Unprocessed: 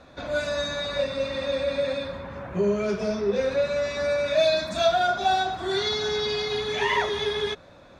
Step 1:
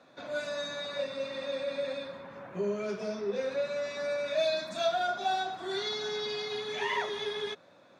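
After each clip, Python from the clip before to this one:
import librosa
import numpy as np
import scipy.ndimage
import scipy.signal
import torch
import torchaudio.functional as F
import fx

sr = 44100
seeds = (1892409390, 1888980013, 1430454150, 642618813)

y = scipy.signal.sosfilt(scipy.signal.bessel(4, 190.0, 'highpass', norm='mag', fs=sr, output='sos'), x)
y = y * librosa.db_to_amplitude(-7.5)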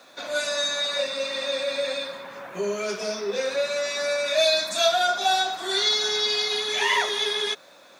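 y = fx.riaa(x, sr, side='recording')
y = y * librosa.db_to_amplitude(8.0)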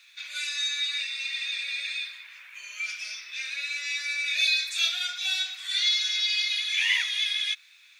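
y = fx.ladder_highpass(x, sr, hz=2100.0, resonance_pct=60)
y = y * librosa.db_to_amplitude(5.5)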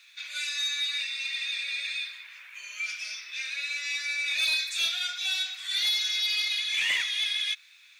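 y = 10.0 ** (-20.0 / 20.0) * np.tanh(x / 10.0 ** (-20.0 / 20.0))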